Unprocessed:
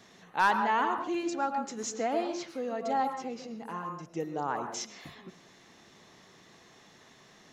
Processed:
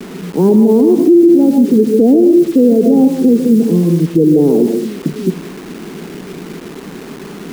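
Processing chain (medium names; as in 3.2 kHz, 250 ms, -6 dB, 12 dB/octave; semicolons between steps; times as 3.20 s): elliptic band-pass 160–430 Hz, stop band 70 dB; bit crusher 11-bit; loudness maximiser +35 dB; trim -1 dB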